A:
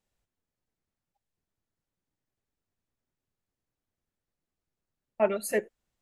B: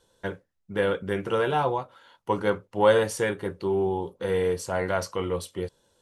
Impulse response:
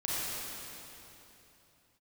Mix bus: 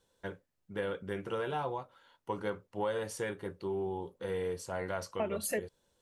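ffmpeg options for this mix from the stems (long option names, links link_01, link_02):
-filter_complex "[0:a]acrossover=split=360|3000[link_01][link_02][link_03];[link_02]acompressor=threshold=-27dB:ratio=6[link_04];[link_01][link_04][link_03]amix=inputs=3:normalize=0,volume=1dB[link_05];[1:a]volume=-9dB[link_06];[link_05][link_06]amix=inputs=2:normalize=0,acompressor=threshold=-30dB:ratio=6"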